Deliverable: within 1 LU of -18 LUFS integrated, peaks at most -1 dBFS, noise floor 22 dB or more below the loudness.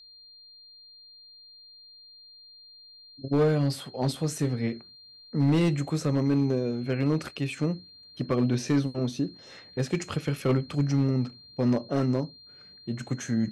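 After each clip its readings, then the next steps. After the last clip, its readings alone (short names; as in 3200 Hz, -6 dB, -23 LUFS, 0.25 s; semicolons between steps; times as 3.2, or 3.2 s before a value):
clipped 0.8%; flat tops at -17.0 dBFS; steady tone 4200 Hz; tone level -49 dBFS; loudness -28.0 LUFS; peak -17.0 dBFS; loudness target -18.0 LUFS
-> clip repair -17 dBFS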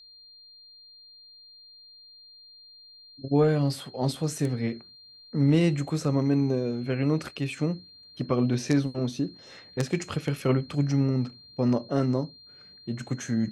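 clipped 0.0%; steady tone 4200 Hz; tone level -49 dBFS
-> notch 4200 Hz, Q 30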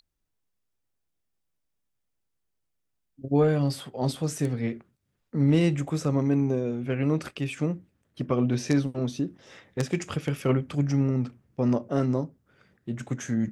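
steady tone none; loudness -27.0 LUFS; peak -8.0 dBFS; loudness target -18.0 LUFS
-> gain +9 dB; limiter -1 dBFS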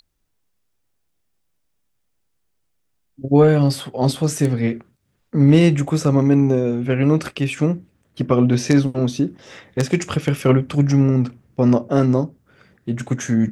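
loudness -18.0 LUFS; peak -1.0 dBFS; noise floor -69 dBFS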